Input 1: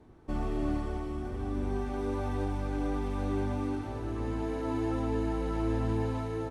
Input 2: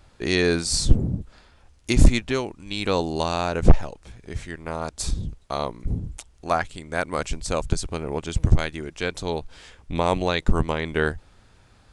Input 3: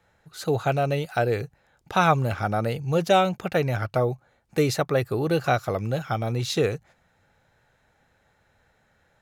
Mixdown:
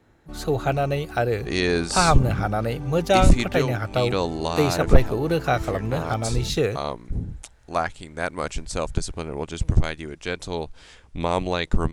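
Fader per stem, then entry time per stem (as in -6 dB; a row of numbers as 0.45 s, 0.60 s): -4.5 dB, -1.5 dB, +0.5 dB; 0.00 s, 1.25 s, 0.00 s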